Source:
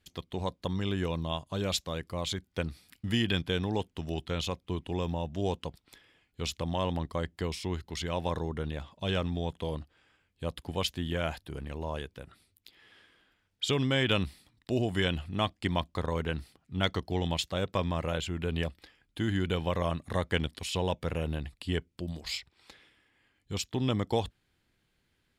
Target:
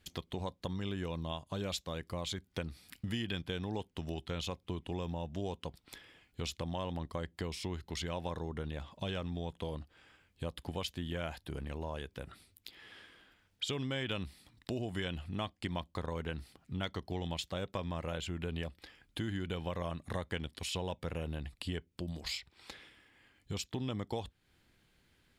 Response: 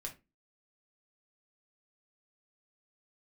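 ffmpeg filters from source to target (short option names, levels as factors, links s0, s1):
-filter_complex "[0:a]acompressor=threshold=0.00708:ratio=3,asplit=2[s0][s1];[1:a]atrim=start_sample=2205,asetrate=66150,aresample=44100[s2];[s1][s2]afir=irnorm=-1:irlink=0,volume=0.15[s3];[s0][s3]amix=inputs=2:normalize=0,volume=1.58"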